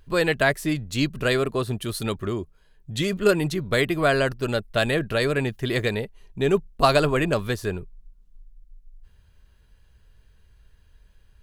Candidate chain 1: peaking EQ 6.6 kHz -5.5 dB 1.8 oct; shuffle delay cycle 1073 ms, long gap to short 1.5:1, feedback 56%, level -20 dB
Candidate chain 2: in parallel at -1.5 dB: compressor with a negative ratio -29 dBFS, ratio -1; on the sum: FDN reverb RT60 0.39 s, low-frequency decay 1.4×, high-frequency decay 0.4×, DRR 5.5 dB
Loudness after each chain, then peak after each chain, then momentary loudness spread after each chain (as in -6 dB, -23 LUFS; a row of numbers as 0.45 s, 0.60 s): -24.5 LUFS, -19.5 LUFS; -4.0 dBFS, -3.0 dBFS; 19 LU, 7 LU